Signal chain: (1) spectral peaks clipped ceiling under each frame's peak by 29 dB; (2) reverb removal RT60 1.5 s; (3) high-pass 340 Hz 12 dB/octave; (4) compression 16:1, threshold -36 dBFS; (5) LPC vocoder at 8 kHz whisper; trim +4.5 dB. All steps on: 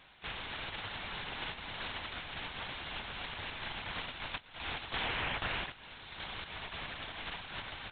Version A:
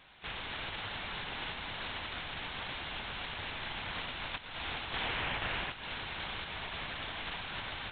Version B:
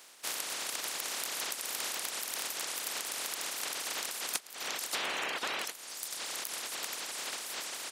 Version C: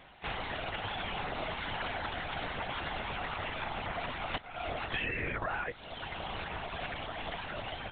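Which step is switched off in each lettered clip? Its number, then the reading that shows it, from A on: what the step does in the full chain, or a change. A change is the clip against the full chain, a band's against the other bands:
2, momentary loudness spread change -2 LU; 5, 125 Hz band -18.0 dB; 1, 4 kHz band -6.5 dB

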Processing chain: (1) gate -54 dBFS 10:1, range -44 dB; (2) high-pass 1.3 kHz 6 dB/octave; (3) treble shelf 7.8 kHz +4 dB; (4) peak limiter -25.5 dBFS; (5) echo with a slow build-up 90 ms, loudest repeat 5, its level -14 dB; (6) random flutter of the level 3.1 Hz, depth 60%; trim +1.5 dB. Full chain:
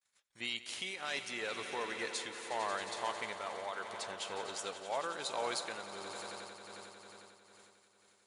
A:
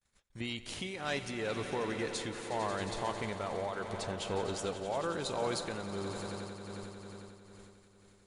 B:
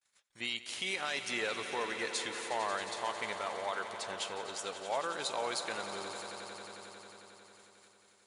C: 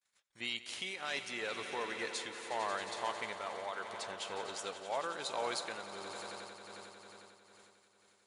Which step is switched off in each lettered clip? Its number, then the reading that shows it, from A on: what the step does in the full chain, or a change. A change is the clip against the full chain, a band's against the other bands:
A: 2, 125 Hz band +18.0 dB; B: 6, crest factor change -1.5 dB; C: 3, 8 kHz band -1.5 dB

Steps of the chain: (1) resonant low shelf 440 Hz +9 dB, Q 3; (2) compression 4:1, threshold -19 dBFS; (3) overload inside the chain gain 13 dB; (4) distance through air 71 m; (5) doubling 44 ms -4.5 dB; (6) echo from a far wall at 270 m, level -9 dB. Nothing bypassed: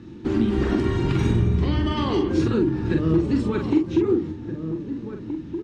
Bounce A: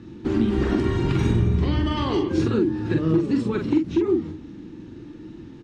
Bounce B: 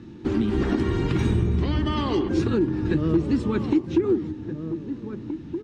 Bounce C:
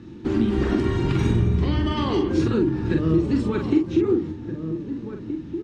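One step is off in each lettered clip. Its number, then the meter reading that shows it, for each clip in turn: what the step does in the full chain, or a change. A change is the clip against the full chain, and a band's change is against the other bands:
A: 6, echo-to-direct -14.0 dB to none; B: 5, loudness change -1.5 LU; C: 3, distortion -28 dB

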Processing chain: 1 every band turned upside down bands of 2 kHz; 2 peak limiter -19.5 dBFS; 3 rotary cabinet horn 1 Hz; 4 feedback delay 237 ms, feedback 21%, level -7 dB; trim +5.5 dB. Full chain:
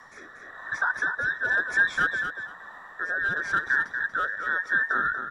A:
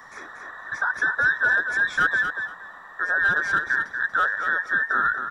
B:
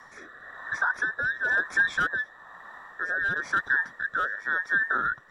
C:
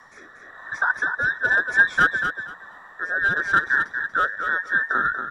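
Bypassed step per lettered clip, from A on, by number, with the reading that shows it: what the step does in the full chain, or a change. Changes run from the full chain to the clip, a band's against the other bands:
3, 1 kHz band +2.0 dB; 4, momentary loudness spread change +4 LU; 2, mean gain reduction 1.5 dB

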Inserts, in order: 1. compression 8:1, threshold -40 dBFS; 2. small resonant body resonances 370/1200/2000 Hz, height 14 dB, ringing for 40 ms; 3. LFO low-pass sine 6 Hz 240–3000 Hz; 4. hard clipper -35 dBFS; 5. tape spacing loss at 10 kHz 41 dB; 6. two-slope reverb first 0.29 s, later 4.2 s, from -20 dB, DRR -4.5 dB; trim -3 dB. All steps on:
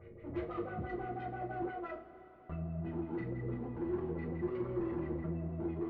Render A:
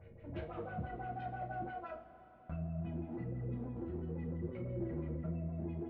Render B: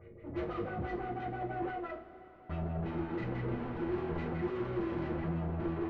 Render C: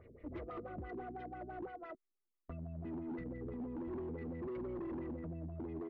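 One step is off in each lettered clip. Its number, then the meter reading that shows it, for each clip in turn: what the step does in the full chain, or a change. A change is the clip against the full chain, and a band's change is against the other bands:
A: 2, 125 Hz band +4.0 dB; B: 1, mean gain reduction 10.0 dB; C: 6, crest factor change -8.0 dB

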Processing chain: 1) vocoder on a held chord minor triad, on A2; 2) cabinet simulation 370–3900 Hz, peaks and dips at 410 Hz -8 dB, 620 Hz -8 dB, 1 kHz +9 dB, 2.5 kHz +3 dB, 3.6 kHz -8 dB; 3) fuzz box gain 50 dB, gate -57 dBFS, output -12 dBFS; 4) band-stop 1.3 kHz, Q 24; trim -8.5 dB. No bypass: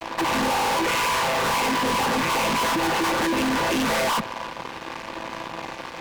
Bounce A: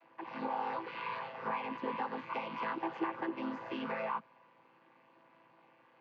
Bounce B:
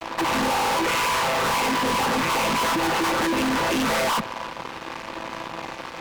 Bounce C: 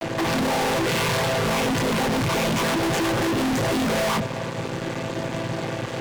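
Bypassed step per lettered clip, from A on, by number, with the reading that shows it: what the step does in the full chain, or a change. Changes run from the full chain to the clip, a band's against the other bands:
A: 3, distortion -1 dB; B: 4, crest factor change -2.5 dB; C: 2, 125 Hz band +10.5 dB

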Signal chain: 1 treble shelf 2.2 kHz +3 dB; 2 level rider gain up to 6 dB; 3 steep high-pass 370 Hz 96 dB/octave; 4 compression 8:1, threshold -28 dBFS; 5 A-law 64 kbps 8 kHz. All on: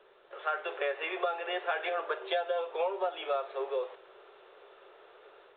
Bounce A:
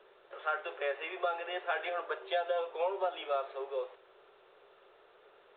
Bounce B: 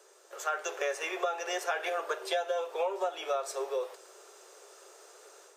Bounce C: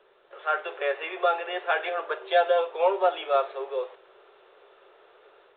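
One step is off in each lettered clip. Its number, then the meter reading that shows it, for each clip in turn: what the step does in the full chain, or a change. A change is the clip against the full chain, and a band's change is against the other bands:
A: 2, momentary loudness spread change +1 LU; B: 5, momentary loudness spread change +16 LU; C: 4, mean gain reduction 3.0 dB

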